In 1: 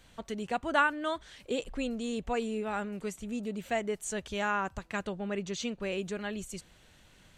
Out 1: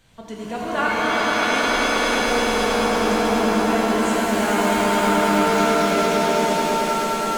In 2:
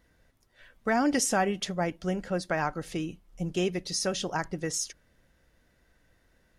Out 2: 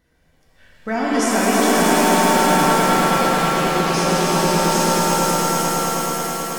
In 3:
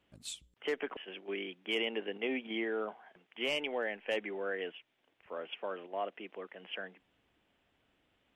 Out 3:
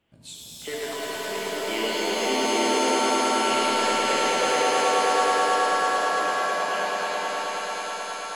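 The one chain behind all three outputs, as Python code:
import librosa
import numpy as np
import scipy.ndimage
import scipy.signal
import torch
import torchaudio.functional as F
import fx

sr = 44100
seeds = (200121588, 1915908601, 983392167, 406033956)

y = fx.peak_eq(x, sr, hz=140.0, db=3.5, octaves=1.4)
y = fx.echo_swell(y, sr, ms=107, loudest=5, wet_db=-5)
y = fx.rev_shimmer(y, sr, seeds[0], rt60_s=2.9, semitones=7, shimmer_db=-2, drr_db=-3.0)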